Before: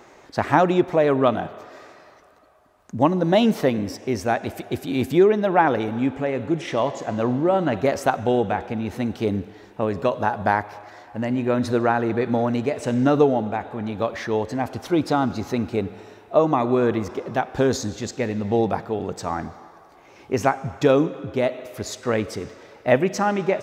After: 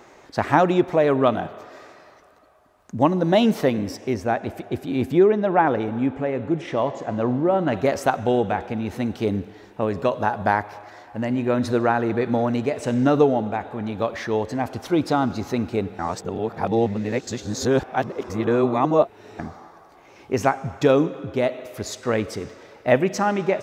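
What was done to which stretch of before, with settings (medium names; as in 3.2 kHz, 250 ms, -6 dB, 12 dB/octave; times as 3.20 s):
4.14–7.68 s: treble shelf 2.8 kHz -9 dB
15.99–19.39 s: reverse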